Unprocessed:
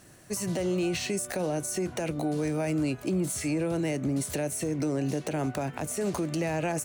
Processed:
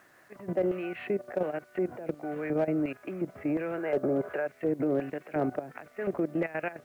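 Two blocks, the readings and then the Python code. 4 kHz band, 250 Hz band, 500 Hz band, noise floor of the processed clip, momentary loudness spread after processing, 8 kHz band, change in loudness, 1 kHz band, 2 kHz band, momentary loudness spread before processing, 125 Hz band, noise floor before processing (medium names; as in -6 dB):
under -15 dB, -2.5 dB, +1.0 dB, -59 dBFS, 7 LU, under -30 dB, -2.0 dB, -2.0 dB, -1.0 dB, 3 LU, -8.5 dB, -48 dBFS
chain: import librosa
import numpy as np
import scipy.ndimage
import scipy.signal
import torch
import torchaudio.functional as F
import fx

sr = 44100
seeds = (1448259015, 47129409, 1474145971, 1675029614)

y = scipy.signal.sosfilt(scipy.signal.cheby2(4, 50, 5600.0, 'lowpass', fs=sr, output='sos'), x)
y = fx.spec_box(y, sr, start_s=3.78, length_s=0.68, low_hz=330.0, high_hz=1700.0, gain_db=10)
y = fx.dynamic_eq(y, sr, hz=940.0, q=2.6, threshold_db=-51.0, ratio=4.0, max_db=-8)
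y = fx.level_steps(y, sr, step_db=15)
y = fx.filter_lfo_bandpass(y, sr, shape='square', hz=1.4, low_hz=620.0, high_hz=1600.0, q=0.78)
y = np.clip(y, -10.0 ** (-26.5 / 20.0), 10.0 ** (-26.5 / 20.0))
y = fx.quant_dither(y, sr, seeds[0], bits=12, dither='none')
y = F.gain(torch.from_numpy(y), 7.0).numpy()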